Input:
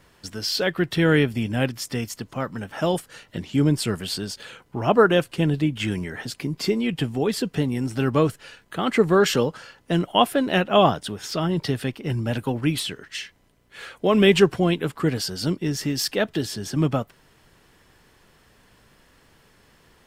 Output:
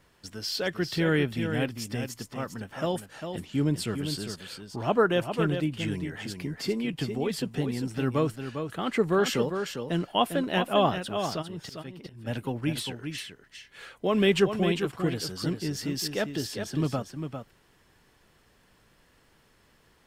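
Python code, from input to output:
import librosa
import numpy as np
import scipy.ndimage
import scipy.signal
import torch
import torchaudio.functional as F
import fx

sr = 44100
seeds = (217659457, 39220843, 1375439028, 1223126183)

y = fx.auto_swell(x, sr, attack_ms=519.0, at=(11.41, 12.26), fade=0.02)
y = y + 10.0 ** (-7.5 / 20.0) * np.pad(y, (int(401 * sr / 1000.0), 0))[:len(y)]
y = y * 10.0 ** (-6.5 / 20.0)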